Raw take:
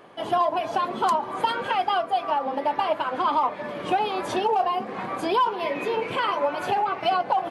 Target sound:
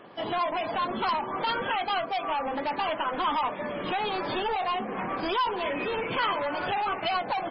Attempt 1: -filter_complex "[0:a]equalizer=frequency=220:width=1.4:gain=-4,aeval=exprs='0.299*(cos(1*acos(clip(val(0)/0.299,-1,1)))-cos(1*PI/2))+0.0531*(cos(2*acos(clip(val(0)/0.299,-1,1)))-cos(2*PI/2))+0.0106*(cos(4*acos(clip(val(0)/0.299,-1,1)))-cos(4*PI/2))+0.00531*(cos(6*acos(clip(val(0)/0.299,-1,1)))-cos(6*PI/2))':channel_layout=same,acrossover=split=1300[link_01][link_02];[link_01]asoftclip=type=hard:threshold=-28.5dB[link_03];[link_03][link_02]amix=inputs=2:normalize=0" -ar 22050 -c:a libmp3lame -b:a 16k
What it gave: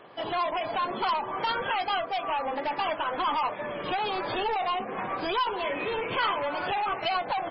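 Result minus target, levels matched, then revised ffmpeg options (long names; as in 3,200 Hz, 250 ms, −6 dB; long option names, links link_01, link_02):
250 Hz band −3.0 dB
-filter_complex "[0:a]equalizer=frequency=220:width=1.4:gain=3,aeval=exprs='0.299*(cos(1*acos(clip(val(0)/0.299,-1,1)))-cos(1*PI/2))+0.0531*(cos(2*acos(clip(val(0)/0.299,-1,1)))-cos(2*PI/2))+0.0106*(cos(4*acos(clip(val(0)/0.299,-1,1)))-cos(4*PI/2))+0.00531*(cos(6*acos(clip(val(0)/0.299,-1,1)))-cos(6*PI/2))':channel_layout=same,acrossover=split=1300[link_01][link_02];[link_01]asoftclip=type=hard:threshold=-28.5dB[link_03];[link_03][link_02]amix=inputs=2:normalize=0" -ar 22050 -c:a libmp3lame -b:a 16k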